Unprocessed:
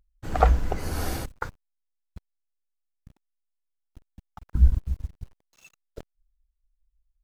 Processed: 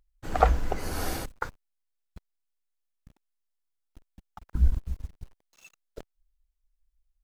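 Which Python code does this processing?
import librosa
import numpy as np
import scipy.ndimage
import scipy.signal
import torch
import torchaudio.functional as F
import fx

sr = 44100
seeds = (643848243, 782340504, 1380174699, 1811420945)

y = fx.peak_eq(x, sr, hz=91.0, db=-6.0, octaves=2.3)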